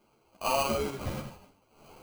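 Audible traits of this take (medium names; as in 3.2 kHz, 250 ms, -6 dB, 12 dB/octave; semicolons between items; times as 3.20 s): aliases and images of a low sample rate 1.8 kHz, jitter 0%; a shimmering, thickened sound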